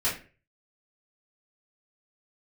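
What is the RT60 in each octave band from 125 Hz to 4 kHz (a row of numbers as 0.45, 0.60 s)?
0.55, 0.40, 0.45, 0.30, 0.40, 0.25 s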